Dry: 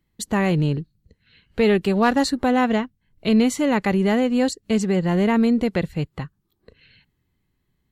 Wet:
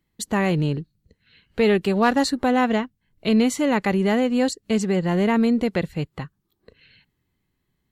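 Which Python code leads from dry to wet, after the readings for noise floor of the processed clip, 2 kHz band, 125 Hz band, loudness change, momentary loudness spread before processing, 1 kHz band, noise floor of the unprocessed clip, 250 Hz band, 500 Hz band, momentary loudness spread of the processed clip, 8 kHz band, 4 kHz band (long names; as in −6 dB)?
−75 dBFS, 0.0 dB, −2.0 dB, −1.0 dB, 11 LU, 0.0 dB, −72 dBFS, −1.0 dB, −0.5 dB, 12 LU, 0.0 dB, 0.0 dB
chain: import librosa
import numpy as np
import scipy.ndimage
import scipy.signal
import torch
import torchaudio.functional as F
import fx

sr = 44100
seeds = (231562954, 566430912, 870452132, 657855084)

y = fx.low_shelf(x, sr, hz=130.0, db=-5.0)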